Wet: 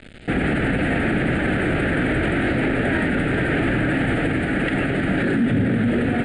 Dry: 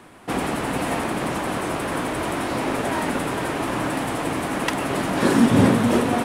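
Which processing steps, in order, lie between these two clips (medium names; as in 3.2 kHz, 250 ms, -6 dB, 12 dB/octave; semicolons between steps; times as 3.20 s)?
peaking EQ 1.6 kHz +11.5 dB 1.2 oct; level rider gain up to 6 dB; bit crusher 6-bit; brick-wall FIR low-pass 9.8 kHz; tilt EQ -2.5 dB/octave; static phaser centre 2.5 kHz, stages 4; peak limiter -15.5 dBFS, peak gain reduction 15.5 dB; trim +3 dB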